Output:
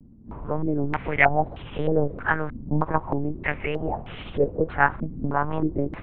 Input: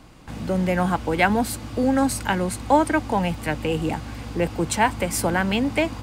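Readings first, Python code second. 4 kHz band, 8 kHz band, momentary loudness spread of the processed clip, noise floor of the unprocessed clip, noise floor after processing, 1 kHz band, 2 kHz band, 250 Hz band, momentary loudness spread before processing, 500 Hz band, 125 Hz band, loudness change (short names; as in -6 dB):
-12.0 dB, under -40 dB, 11 LU, -37 dBFS, -42 dBFS, -2.5 dB, +0.5 dB, -5.5 dB, 7 LU, -2.0 dB, -1.5 dB, -2.5 dB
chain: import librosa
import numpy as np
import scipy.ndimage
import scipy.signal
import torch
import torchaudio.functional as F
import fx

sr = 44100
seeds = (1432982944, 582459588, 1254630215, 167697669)

y = fx.lpc_monotone(x, sr, seeds[0], pitch_hz=150.0, order=8)
y = fx.wow_flutter(y, sr, seeds[1], rate_hz=2.1, depth_cents=100.0)
y = fx.filter_held_lowpass(y, sr, hz=3.2, low_hz=240.0, high_hz=3100.0)
y = y * 10.0 ** (-4.5 / 20.0)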